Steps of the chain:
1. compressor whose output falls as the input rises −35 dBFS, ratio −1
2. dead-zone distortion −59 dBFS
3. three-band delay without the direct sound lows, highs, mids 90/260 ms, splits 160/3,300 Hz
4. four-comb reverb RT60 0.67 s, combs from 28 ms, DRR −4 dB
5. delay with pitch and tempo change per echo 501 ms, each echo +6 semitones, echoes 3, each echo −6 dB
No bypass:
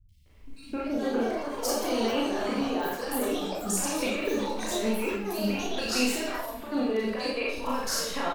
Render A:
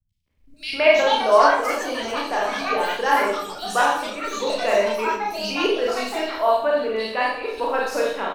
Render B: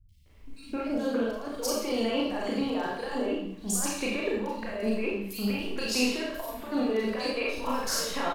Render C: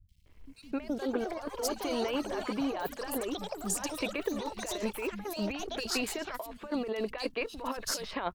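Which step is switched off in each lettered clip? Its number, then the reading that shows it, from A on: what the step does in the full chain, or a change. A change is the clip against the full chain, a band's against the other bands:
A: 1, change in crest factor +4.5 dB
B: 5, 1 kHz band −1.5 dB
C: 4, change in crest factor +2.0 dB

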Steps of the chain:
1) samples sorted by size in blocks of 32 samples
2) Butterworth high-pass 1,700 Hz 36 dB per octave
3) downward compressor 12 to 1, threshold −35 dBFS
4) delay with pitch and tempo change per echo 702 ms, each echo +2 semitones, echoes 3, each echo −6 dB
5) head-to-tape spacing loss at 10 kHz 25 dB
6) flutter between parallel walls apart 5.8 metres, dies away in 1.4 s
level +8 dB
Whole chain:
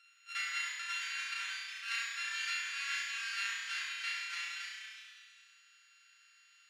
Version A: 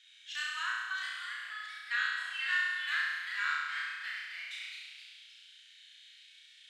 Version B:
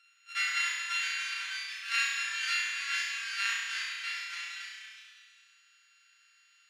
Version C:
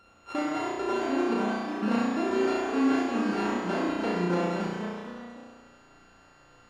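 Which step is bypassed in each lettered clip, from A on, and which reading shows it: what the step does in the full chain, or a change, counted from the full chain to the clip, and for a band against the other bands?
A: 1, 8 kHz band −13.5 dB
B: 3, average gain reduction 2.0 dB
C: 2, 1 kHz band +19.0 dB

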